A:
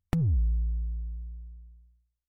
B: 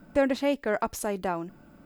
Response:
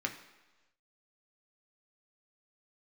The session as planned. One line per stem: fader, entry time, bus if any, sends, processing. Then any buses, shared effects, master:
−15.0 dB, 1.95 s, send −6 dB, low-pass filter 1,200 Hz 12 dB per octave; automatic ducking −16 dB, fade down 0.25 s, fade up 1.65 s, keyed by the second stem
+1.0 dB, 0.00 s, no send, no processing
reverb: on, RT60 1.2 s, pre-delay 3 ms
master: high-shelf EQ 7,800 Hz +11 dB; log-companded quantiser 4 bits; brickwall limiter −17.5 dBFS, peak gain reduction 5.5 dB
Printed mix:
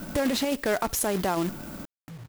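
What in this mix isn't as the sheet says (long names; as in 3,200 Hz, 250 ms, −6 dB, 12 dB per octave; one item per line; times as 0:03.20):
stem A: missing low-pass filter 1,200 Hz 12 dB per octave
stem B +1.0 dB → +13.0 dB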